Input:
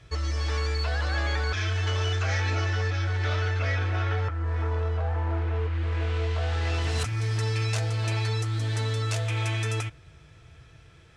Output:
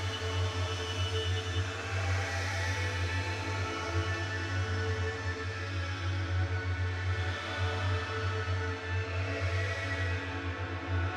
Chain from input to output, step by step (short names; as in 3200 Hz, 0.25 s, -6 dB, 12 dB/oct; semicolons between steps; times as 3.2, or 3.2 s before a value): added harmonics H 7 -20 dB, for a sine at -15 dBFS; Paulstretch 5.3×, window 0.25 s, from 1.87; gain -6 dB